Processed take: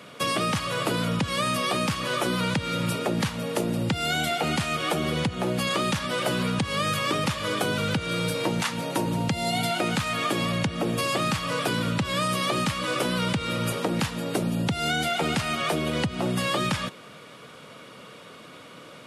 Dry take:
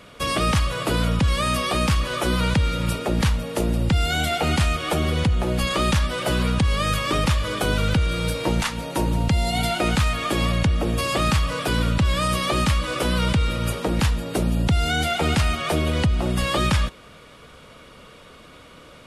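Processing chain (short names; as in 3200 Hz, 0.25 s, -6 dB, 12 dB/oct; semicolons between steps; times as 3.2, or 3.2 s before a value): HPF 120 Hz 24 dB/oct; compressor, threshold -23 dBFS, peak gain reduction 6 dB; gain +1 dB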